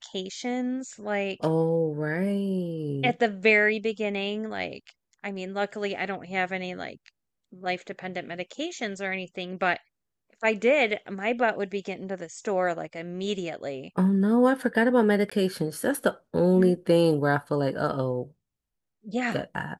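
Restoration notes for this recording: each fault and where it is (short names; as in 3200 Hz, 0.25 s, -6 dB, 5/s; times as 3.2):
15.3–15.31 gap 15 ms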